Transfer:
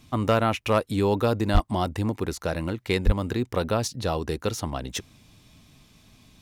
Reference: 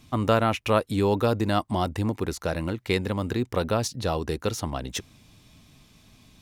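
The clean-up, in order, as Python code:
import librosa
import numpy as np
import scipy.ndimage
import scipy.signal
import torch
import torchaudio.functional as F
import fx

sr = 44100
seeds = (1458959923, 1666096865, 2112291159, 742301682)

y = fx.fix_declip(x, sr, threshold_db=-11.0)
y = fx.fix_deplosive(y, sr, at_s=(1.53, 3.05))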